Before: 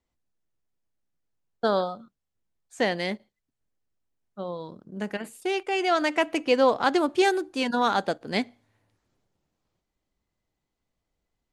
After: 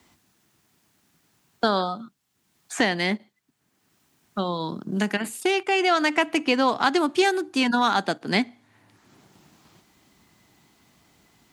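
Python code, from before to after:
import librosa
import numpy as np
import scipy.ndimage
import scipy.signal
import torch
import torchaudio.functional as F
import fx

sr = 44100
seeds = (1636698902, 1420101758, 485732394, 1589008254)

y = scipy.signal.sosfilt(scipy.signal.butter(2, 130.0, 'highpass', fs=sr, output='sos'), x)
y = fx.peak_eq(y, sr, hz=520.0, db=-10.0, octaves=0.6)
y = fx.band_squash(y, sr, depth_pct=70)
y = y * librosa.db_to_amplitude(5.0)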